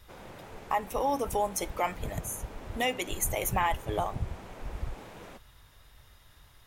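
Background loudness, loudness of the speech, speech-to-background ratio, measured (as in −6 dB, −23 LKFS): −47.5 LKFS, −32.0 LKFS, 15.5 dB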